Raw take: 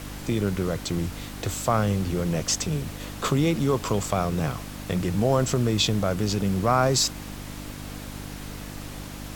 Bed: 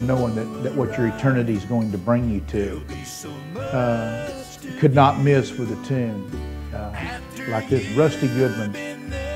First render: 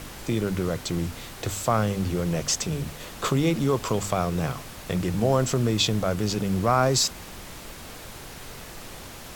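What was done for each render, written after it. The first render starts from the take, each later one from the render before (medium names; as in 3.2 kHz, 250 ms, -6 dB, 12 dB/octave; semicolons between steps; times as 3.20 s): de-hum 50 Hz, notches 6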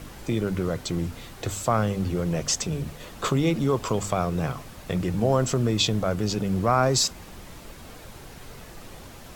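noise reduction 6 dB, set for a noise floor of -41 dBFS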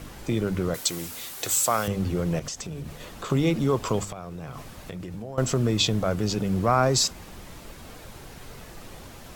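0.74–1.88 s: RIAA curve recording; 2.39–3.30 s: compression, threshold -31 dBFS; 4.04–5.38 s: compression 12:1, threshold -32 dBFS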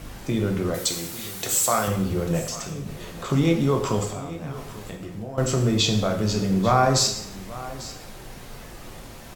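delay 843 ms -17 dB; plate-style reverb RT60 0.69 s, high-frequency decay 0.95×, DRR 2 dB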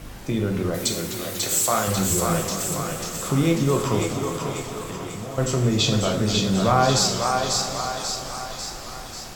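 thinning echo 542 ms, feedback 59%, high-pass 520 Hz, level -3 dB; modulated delay 248 ms, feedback 67%, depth 203 cents, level -12.5 dB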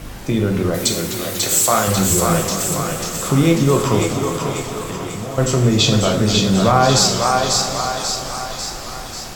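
trim +6 dB; peak limiter -2 dBFS, peak gain reduction 2.5 dB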